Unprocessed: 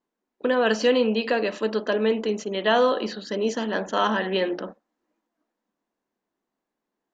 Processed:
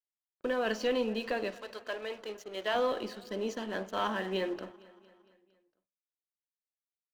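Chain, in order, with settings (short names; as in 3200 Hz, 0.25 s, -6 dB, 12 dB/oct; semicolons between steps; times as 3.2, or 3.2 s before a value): one diode to ground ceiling -12 dBFS; 1.54–2.73 HPF 770 Hz -> 360 Hz 12 dB/oct; crossover distortion -42.5 dBFS; feedback echo 0.229 s, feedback 58%, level -21 dB; reverb RT60 0.35 s, pre-delay 3 ms, DRR 15 dB; gain -8 dB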